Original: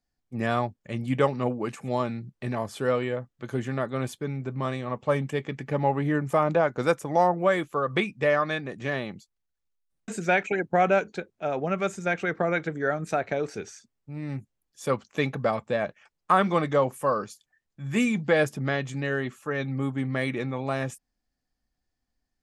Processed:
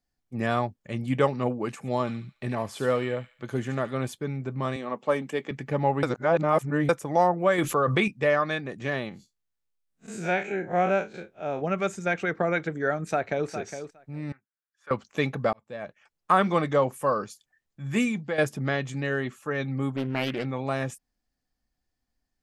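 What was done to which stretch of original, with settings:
0:02.00–0:03.95: delay with a high-pass on its return 72 ms, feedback 42%, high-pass 2,600 Hz, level −5.5 dB
0:04.76–0:05.51: high-pass filter 190 Hz 24 dB per octave
0:06.03–0:06.89: reverse
0:07.58–0:08.08: envelope flattener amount 70%
0:09.09–0:11.62: spectrum smeared in time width 84 ms
0:12.97–0:13.49: delay throw 410 ms, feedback 10%, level −9.5 dB
0:14.32–0:14.91: resonant band-pass 1,500 Hz, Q 4.6
0:15.53–0:16.32: fade in
0:17.96–0:18.38: fade out, to −11 dB
0:19.96–0:20.45: highs frequency-modulated by the lows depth 0.59 ms

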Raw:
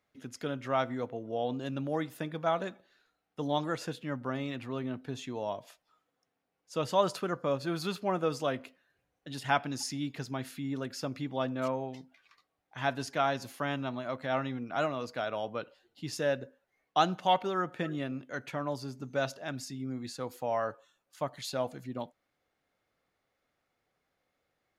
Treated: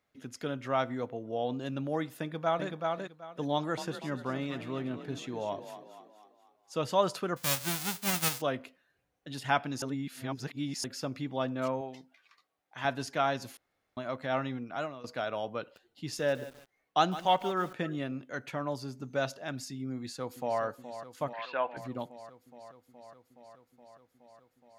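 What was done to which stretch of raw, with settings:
0:02.21–0:02.69: delay throw 380 ms, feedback 20%, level −3 dB
0:03.53–0:06.85: echo with shifted repeats 241 ms, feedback 48%, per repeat +36 Hz, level −11 dB
0:07.36–0:08.40: spectral envelope flattened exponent 0.1
0:09.82–0:10.84: reverse
0:11.81–0:12.85: low-shelf EQ 200 Hz −10 dB
0:13.57–0:13.97: fill with room tone
0:14.54–0:15.04: fade out, to −13.5 dB
0:15.60–0:17.73: feedback echo at a low word length 155 ms, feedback 35%, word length 7 bits, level −14 dB
0:19.94–0:20.61: delay throw 420 ms, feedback 80%, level −11.5 dB
0:21.33–0:21.77: loudspeaker in its box 420–3,000 Hz, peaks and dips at 1,000 Hz +9 dB, 1,600 Hz +10 dB, 2,600 Hz +10 dB

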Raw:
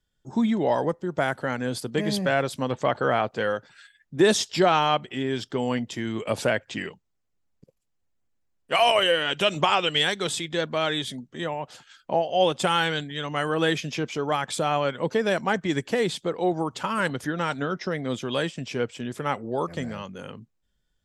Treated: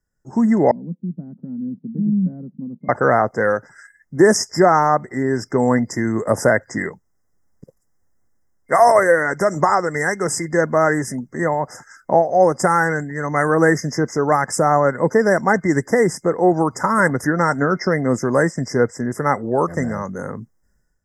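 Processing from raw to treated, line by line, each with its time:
0:00.71–0:02.89: flat-topped band-pass 200 Hz, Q 2.9
whole clip: brick-wall band-stop 2,100–4,900 Hz; automatic gain control gain up to 11.5 dB

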